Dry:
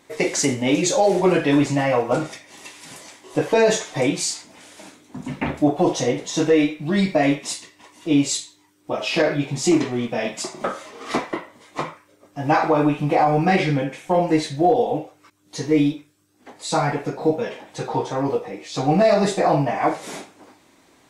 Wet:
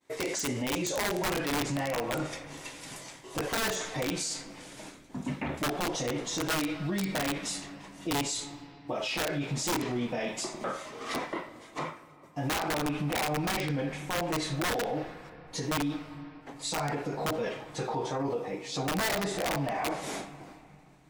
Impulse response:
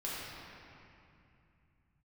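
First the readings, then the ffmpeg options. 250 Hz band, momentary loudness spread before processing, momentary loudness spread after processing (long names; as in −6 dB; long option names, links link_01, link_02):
−12.5 dB, 16 LU, 13 LU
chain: -filter_complex "[0:a]agate=range=-33dB:threshold=-48dB:ratio=3:detection=peak,aeval=exprs='(mod(3.55*val(0)+1,2)-1)/3.55':channel_layout=same,asplit=2[link_01][link_02];[1:a]atrim=start_sample=2205,lowpass=6400,adelay=62[link_03];[link_02][link_03]afir=irnorm=-1:irlink=0,volume=-22.5dB[link_04];[link_01][link_04]amix=inputs=2:normalize=0,alimiter=limit=-20.5dB:level=0:latency=1:release=40,volume=-3.5dB"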